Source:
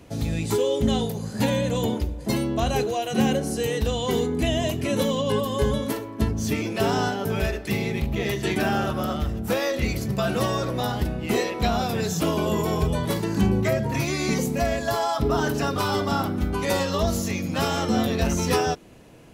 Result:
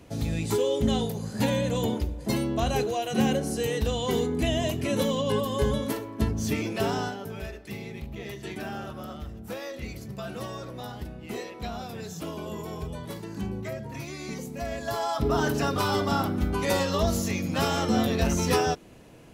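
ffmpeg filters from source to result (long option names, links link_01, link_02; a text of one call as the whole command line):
ffmpeg -i in.wav -af "volume=8dB,afade=type=out:start_time=6.68:duration=0.64:silence=0.334965,afade=type=in:start_time=14.52:duration=0.89:silence=0.298538" out.wav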